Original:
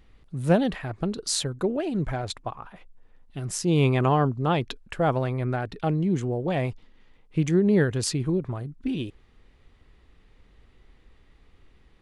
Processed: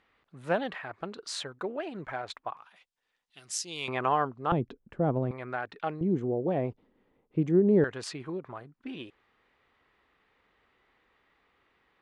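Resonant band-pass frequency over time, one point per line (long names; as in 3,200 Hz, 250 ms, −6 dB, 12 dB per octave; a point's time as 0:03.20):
resonant band-pass, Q 0.81
1,400 Hz
from 0:02.57 4,900 Hz
from 0:03.88 1,300 Hz
from 0:04.52 250 Hz
from 0:05.31 1,400 Hz
from 0:06.01 390 Hz
from 0:07.84 1,300 Hz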